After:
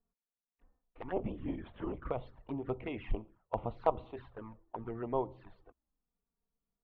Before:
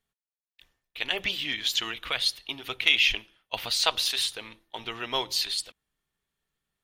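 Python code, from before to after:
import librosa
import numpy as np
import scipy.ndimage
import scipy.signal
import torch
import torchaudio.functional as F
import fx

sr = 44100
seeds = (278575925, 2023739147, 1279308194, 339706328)

y = scipy.signal.sosfilt(scipy.signal.butter(4, 1100.0, 'lowpass', fs=sr, output='sos'), x)
y = fx.low_shelf(y, sr, hz=350.0, db=5.0)
y = fx.rider(y, sr, range_db=5, speed_s=2.0)
y = fx.env_flanger(y, sr, rest_ms=4.3, full_db=-34.0)
y = fx.lpc_vocoder(y, sr, seeds[0], excitation='whisper', order=16, at=(1.16, 2.05))
y = y * librosa.db_to_amplitude(1.0)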